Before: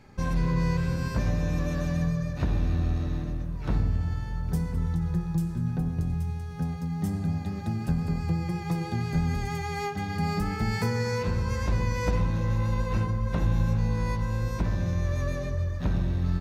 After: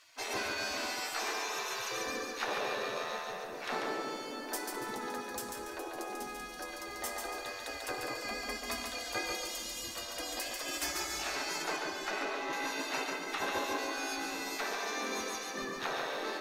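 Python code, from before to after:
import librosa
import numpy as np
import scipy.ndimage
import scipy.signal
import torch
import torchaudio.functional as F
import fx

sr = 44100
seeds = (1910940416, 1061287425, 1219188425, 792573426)

y = fx.spec_gate(x, sr, threshold_db=-25, keep='weak')
y = fx.high_shelf(y, sr, hz=4700.0, db=-11.0, at=(11.62, 12.53))
y = fx.echo_feedback(y, sr, ms=142, feedback_pct=37, wet_db=-4.5)
y = y * librosa.db_to_amplitude(8.0)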